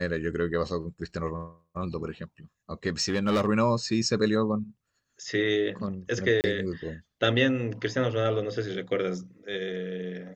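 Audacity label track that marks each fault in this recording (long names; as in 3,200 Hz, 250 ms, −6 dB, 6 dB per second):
3.000000	3.480000	clipping −20 dBFS
6.410000	6.440000	drop-out 29 ms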